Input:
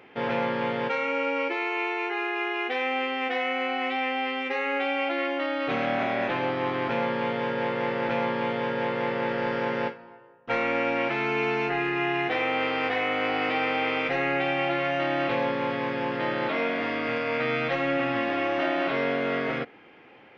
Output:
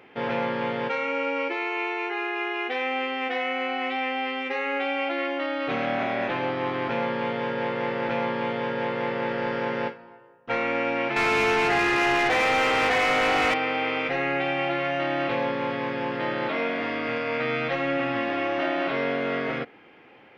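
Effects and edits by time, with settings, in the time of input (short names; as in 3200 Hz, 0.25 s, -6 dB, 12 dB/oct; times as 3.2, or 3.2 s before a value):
11.16–13.54 overdrive pedal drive 21 dB, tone 2600 Hz, clips at -14.5 dBFS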